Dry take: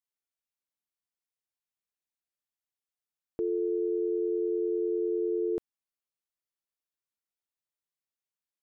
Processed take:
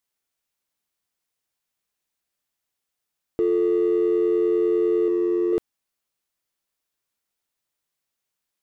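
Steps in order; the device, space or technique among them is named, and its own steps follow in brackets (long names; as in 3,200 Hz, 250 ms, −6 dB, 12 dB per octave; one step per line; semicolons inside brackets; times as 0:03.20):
0:05.08–0:05.53: flat-topped bell 620 Hz −8.5 dB 1 octave
parallel distortion (in parallel at −6.5 dB: hard clipping −36.5 dBFS, distortion −7 dB)
on the sum: level +7.5 dB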